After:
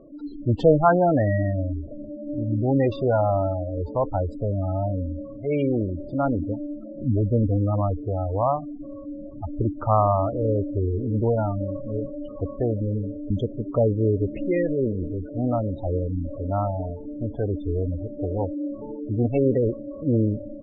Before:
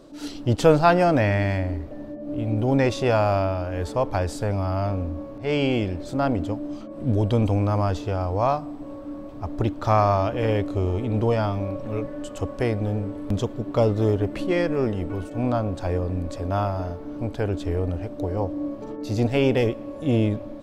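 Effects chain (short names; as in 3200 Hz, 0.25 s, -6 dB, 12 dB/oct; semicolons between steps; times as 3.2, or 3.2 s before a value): spectral gate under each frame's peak -15 dB strong; LPF 3200 Hz 12 dB/oct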